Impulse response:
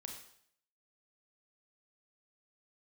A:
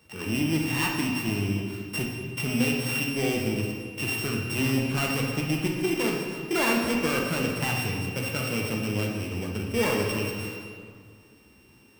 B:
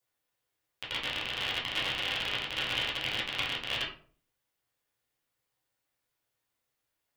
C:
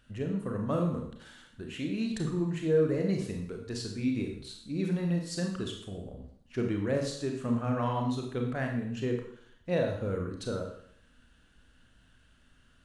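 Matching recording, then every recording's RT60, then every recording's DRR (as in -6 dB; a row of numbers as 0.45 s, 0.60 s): C; 2.0 s, 0.50 s, 0.65 s; -1.5 dB, -7.0 dB, 2.0 dB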